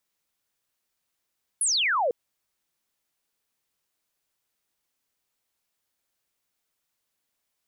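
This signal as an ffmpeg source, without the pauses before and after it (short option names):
-f lavfi -i "aevalsrc='0.0891*clip(t/0.002,0,1)*clip((0.5-t)/0.002,0,1)*sin(2*PI*11000*0.5/log(450/11000)*(exp(log(450/11000)*t/0.5)-1))':d=0.5:s=44100"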